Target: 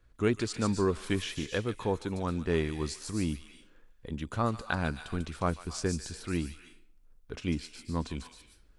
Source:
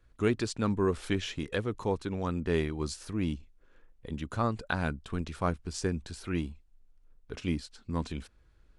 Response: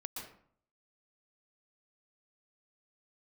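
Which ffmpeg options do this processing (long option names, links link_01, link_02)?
-filter_complex "[0:a]asplit=2[link_01][link_02];[link_02]aderivative[link_03];[1:a]atrim=start_sample=2205,adelay=145[link_04];[link_03][link_04]afir=irnorm=-1:irlink=0,volume=3dB[link_05];[link_01][link_05]amix=inputs=2:normalize=0"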